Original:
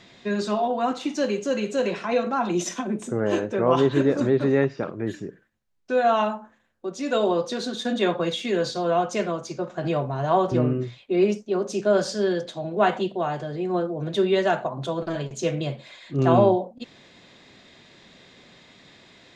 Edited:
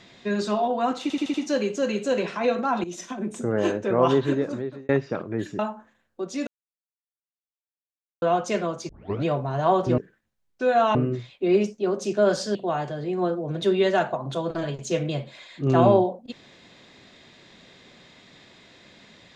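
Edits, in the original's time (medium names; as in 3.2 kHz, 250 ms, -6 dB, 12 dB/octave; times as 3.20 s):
1.02 s: stutter 0.08 s, 5 plays
2.52–3.10 s: fade in, from -13.5 dB
3.75–4.57 s: fade out
5.27–6.24 s: move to 10.63 s
7.12–8.87 s: mute
9.54 s: tape start 0.36 s
12.23–13.07 s: delete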